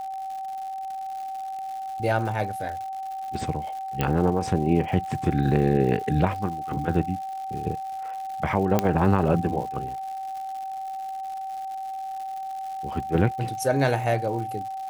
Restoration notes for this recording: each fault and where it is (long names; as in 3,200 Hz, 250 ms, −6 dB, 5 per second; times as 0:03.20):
surface crackle 210 per second −35 dBFS
whistle 770 Hz −30 dBFS
0:04.01: click −10 dBFS
0:08.79: click −7 dBFS